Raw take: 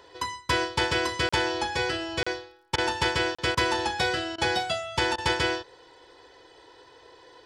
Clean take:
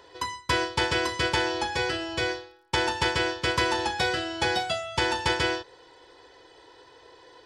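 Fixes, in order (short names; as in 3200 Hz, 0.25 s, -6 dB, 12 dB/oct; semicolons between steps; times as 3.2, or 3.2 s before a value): clip repair -14 dBFS; interpolate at 1.29/2.23/3.35, 35 ms; interpolate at 2.76/3.55/4.36/5.16, 20 ms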